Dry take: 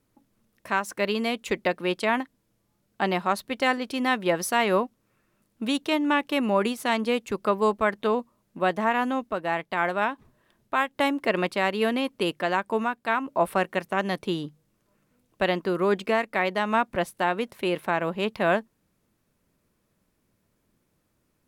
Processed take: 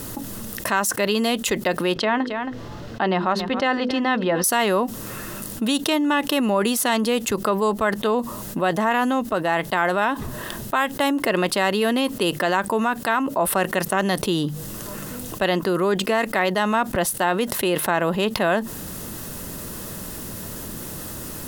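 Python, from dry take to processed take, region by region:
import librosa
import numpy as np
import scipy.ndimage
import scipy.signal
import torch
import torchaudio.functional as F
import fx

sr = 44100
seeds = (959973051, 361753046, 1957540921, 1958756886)

y = fx.chain(x, sr, fx.air_absorb(metres=220.0),
    fx.hum_notches(base_hz=50, count=10),
    fx.echo_single(ms=272, db=-21.0), at=(1.94, 4.44))
y = fx.high_shelf(y, sr, hz=6100.0, db=10.0)
y = fx.notch(y, sr, hz=2300.0, q=6.7)
y = fx.env_flatten(y, sr, amount_pct=70)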